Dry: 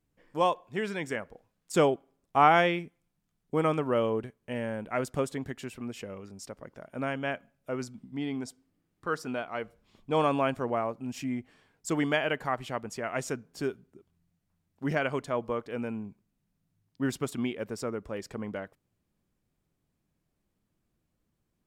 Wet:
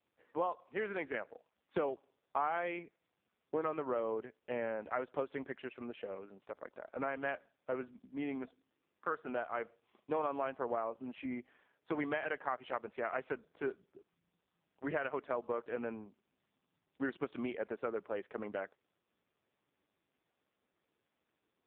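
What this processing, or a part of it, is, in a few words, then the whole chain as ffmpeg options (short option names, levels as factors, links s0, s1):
voicemail: -filter_complex "[0:a]asplit=3[s0][s1][s2];[s0]afade=t=out:st=13.32:d=0.02[s3];[s1]equalizer=f=160:t=o:w=0.33:g=5,equalizer=f=250:t=o:w=0.33:g=-4,equalizer=f=6300:t=o:w=0.33:g=-4,equalizer=f=10000:t=o:w=0.33:g=-9,afade=t=in:st=13.32:d=0.02,afade=t=out:st=15.09:d=0.02[s4];[s2]afade=t=in:st=15.09:d=0.02[s5];[s3][s4][s5]amix=inputs=3:normalize=0,highpass=380,lowpass=2600,acompressor=threshold=0.0251:ratio=6,volume=1.12" -ar 8000 -c:a libopencore_amrnb -b:a 5150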